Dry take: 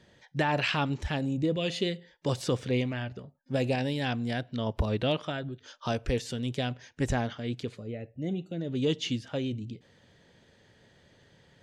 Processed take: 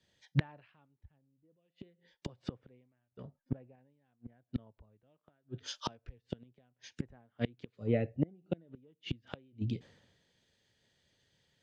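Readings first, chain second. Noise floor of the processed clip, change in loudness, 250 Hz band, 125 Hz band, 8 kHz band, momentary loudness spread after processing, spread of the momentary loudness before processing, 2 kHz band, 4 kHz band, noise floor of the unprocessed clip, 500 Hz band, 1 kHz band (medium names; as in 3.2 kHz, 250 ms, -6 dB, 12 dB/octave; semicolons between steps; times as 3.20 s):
-85 dBFS, -8.5 dB, -9.5 dB, -8.0 dB, -11.5 dB, 21 LU, 10 LU, -15.5 dB, -14.0 dB, -62 dBFS, -11.5 dB, -16.0 dB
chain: low-pass that closes with the level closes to 1.8 kHz, closed at -28 dBFS; inverted gate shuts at -26 dBFS, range -30 dB; three bands expanded up and down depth 100%; trim +1.5 dB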